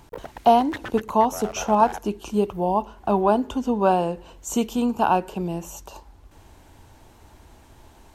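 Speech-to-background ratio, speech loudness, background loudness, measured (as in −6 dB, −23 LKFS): 14.5 dB, −22.5 LKFS, −37.0 LKFS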